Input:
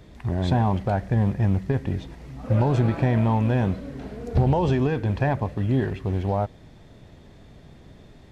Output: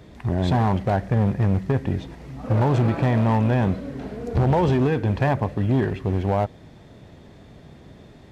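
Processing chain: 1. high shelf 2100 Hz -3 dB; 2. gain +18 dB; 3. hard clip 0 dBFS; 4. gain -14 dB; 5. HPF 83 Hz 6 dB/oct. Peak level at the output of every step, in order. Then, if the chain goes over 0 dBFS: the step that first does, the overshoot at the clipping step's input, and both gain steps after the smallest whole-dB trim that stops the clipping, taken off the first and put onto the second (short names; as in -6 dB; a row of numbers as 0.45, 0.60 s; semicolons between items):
-10.5, +7.5, 0.0, -14.0, -9.0 dBFS; step 2, 7.5 dB; step 2 +10 dB, step 4 -6 dB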